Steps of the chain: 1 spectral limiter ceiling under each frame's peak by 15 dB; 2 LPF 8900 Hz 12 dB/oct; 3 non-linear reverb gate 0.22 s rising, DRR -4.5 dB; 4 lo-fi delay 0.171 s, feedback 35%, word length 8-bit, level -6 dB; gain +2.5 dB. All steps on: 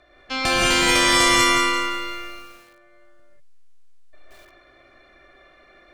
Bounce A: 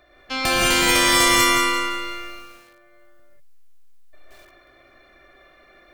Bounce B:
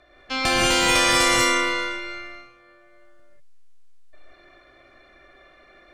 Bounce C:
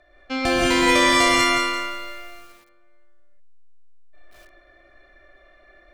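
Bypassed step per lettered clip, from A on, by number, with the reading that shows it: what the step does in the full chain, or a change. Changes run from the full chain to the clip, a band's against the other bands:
2, 8 kHz band +1.5 dB; 4, 500 Hz band +2.0 dB; 1, 250 Hz band +4.5 dB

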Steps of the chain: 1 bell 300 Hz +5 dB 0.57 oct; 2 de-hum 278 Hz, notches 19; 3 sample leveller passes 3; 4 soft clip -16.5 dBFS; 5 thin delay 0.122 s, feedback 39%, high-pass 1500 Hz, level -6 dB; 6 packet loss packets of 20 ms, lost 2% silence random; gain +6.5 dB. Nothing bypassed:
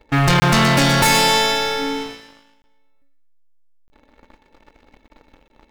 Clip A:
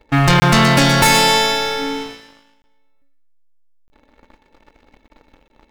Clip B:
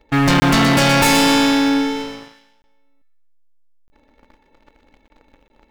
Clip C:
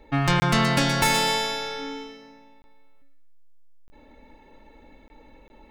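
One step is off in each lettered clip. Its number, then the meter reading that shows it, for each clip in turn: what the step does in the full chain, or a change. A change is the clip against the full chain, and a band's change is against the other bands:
4, distortion -18 dB; 2, 250 Hz band +6.5 dB; 3, crest factor change +4.0 dB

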